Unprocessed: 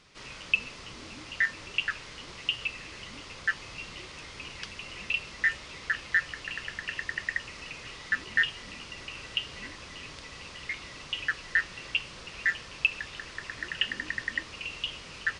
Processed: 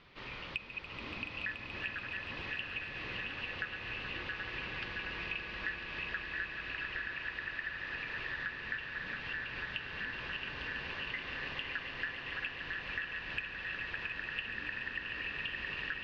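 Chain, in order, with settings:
feedback delay that plays each chunk backwards 322 ms, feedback 80%, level −9.5 dB
low-pass filter 3,800 Hz 24 dB per octave
downward compressor, threshold −38 dBFS, peak gain reduction 17.5 dB
on a send: echo that builds up and dies away 137 ms, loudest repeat 5, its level −11 dB
on the sum: wrong playback speed 25 fps video run at 24 fps

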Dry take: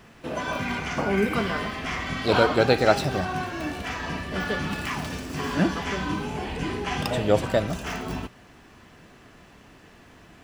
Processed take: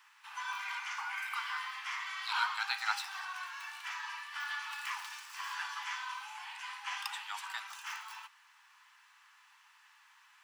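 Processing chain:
Butterworth high-pass 850 Hz 96 dB per octave
level −7.5 dB

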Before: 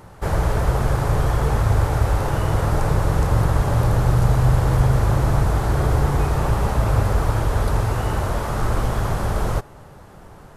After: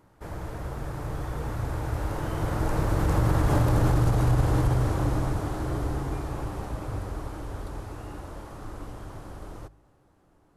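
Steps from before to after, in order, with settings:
source passing by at 0:03.81, 15 m/s, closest 8.8 metres
brickwall limiter −14 dBFS, peak gain reduction 8.5 dB
parametric band 300 Hz +10 dB 0.33 octaves
hum removal 52.12 Hz, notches 3

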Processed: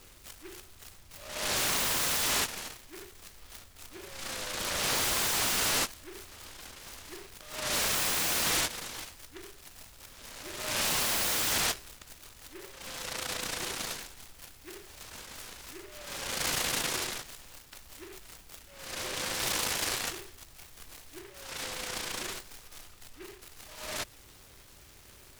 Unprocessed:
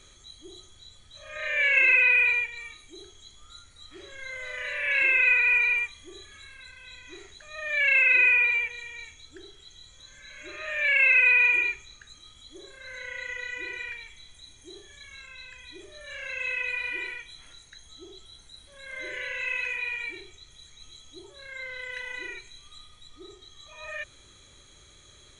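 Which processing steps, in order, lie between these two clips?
wave folding −24 dBFS
short delay modulated by noise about 1,700 Hz, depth 0.19 ms

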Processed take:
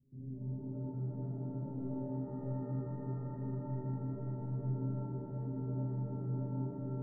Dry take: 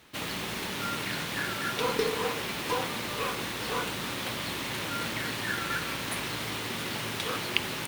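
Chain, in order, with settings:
inverse Chebyshev low-pass filter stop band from 990 Hz, stop band 70 dB
change of speed 1.12×
stiff-string resonator 130 Hz, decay 0.6 s, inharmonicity 0.008
reverb with rising layers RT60 3.6 s, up +7 semitones, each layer −2 dB, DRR 3 dB
level +12.5 dB

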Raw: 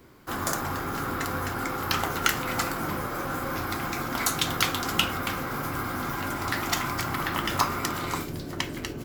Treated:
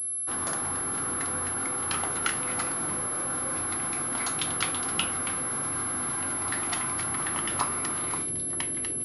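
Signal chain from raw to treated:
low-shelf EQ 63 Hz −10 dB
switching amplifier with a slow clock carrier 11,000 Hz
level −4.5 dB

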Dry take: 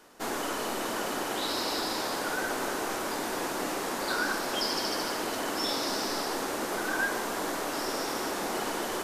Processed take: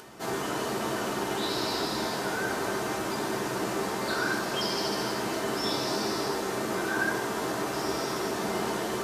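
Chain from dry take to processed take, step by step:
high-pass filter 77 Hz
low-shelf EQ 160 Hz +10.5 dB
convolution reverb RT60 0.60 s, pre-delay 4 ms, DRR −1.5 dB
upward compression, threshold −37 dBFS
level −3.5 dB

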